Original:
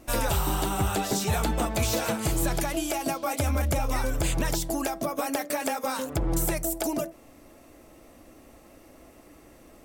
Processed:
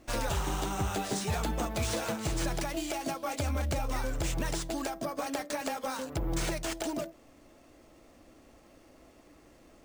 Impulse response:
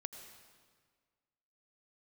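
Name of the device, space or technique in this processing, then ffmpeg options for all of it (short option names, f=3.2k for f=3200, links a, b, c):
crushed at another speed: -af "asetrate=22050,aresample=44100,acrusher=samples=6:mix=1:aa=0.000001,asetrate=88200,aresample=44100,volume=-5.5dB"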